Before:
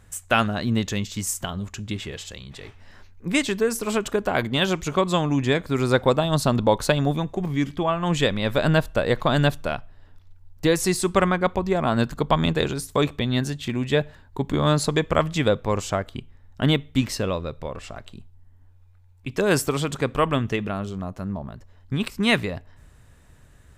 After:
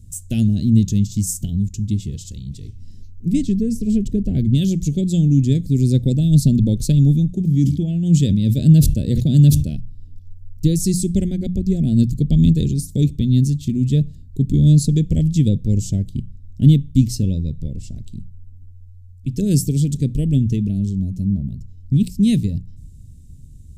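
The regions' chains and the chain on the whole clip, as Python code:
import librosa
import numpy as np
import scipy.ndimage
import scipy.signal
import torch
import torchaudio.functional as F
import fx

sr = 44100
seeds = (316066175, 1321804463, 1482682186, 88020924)

y = fx.chain(x, sr, fx.lowpass(hz=2300.0, slope=6),
    fx.low_shelf(hz=160.0, db=6.5), at=(3.33, 4.55))
y = fx.chain(y, sr, fx.highpass(hz=58.0, slope=12),
    fx.sustainer(db_per_s=91.0), at=(7.34, 9.75))
y = scipy.signal.sosfilt(scipy.signal.cheby1(2, 1.0, [200.0, 6000.0], 'bandstop', fs=sr, output='sos'), y)
y = fx.low_shelf(y, sr, hz=380.0, db=10.5)
y = fx.hum_notches(y, sr, base_hz=60, count=3)
y = F.gain(torch.from_numpy(y), 3.0).numpy()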